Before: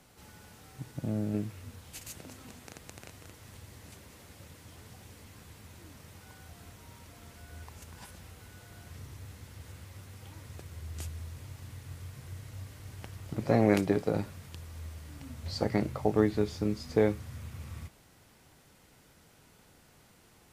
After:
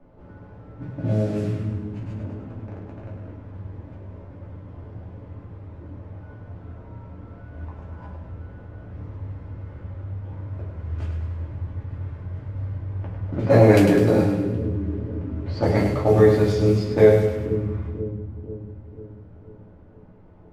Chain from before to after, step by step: level-controlled noise filter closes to 750 Hz, open at -24.5 dBFS; two-band feedback delay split 380 Hz, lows 490 ms, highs 102 ms, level -6.5 dB; simulated room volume 150 m³, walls furnished, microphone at 2.6 m; trim +3.5 dB

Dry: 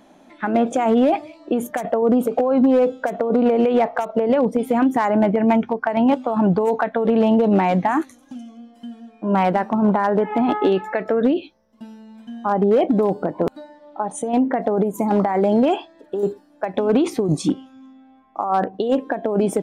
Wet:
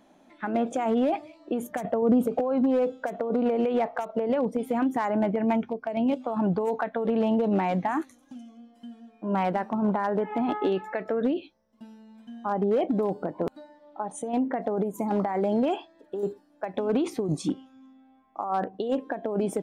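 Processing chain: 1.71–2.40 s: peaking EQ 110 Hz +8.5 dB 2.4 oct; 5.69–6.20 s: time-frequency box 710–2100 Hz -9 dB; trim -8 dB

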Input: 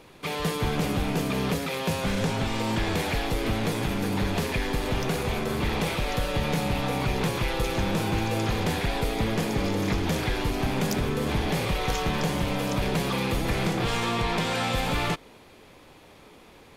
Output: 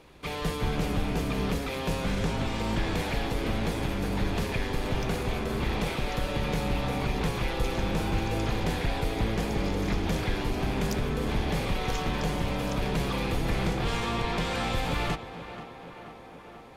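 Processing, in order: octave divider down 2 oct, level -1 dB; treble shelf 8.5 kHz -4.5 dB; tape echo 483 ms, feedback 77%, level -11 dB, low-pass 2.8 kHz; trim -3.5 dB

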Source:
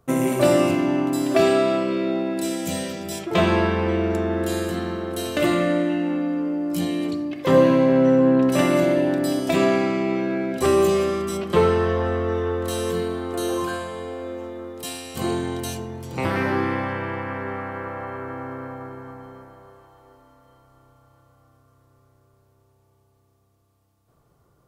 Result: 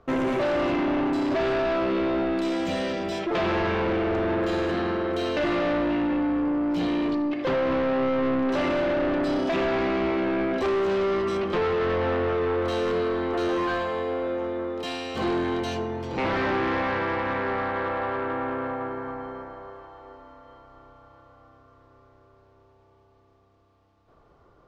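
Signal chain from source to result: peaking EQ 130 Hz -12 dB 1.4 oct; compression 4:1, threshold -19 dBFS, peak gain reduction 6.5 dB; saturation -30 dBFS, distortion -7 dB; distance through air 220 m; trim +8.5 dB

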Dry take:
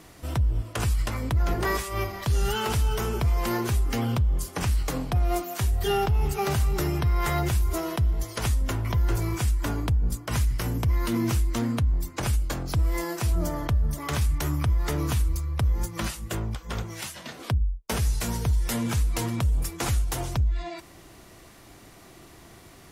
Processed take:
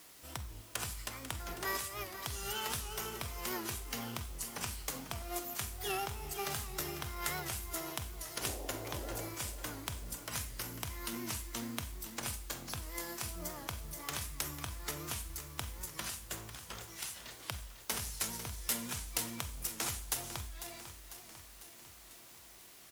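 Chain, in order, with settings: tilt EQ +2.5 dB/octave; 8.40–9.27 s: band noise 250–770 Hz -34 dBFS; in parallel at -5.5 dB: word length cut 6-bit, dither triangular; on the sum: Chebyshev shaper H 3 -12 dB, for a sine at -5.5 dBFS; feedback delay 498 ms, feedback 59%, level -11.5 dB; Schroeder reverb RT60 0.46 s, combs from 31 ms, DRR 11.5 dB; warped record 78 rpm, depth 100 cents; trim -5 dB

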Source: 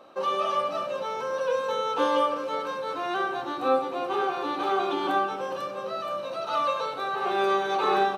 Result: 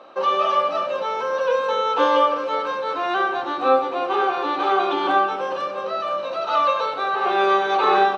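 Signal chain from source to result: high-pass 450 Hz 6 dB/octave; distance through air 120 m; trim +8.5 dB

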